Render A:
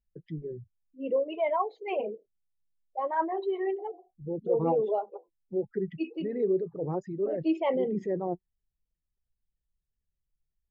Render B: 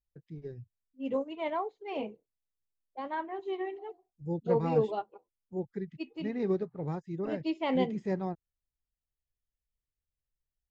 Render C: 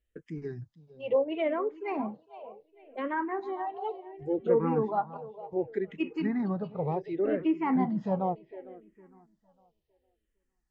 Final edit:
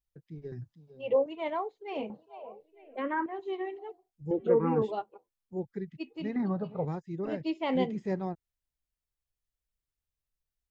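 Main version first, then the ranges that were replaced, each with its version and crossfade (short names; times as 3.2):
B
0.52–1.26 from C
2.1–3.26 from C
4.31–4.82 from C
6.36–6.85 from C
not used: A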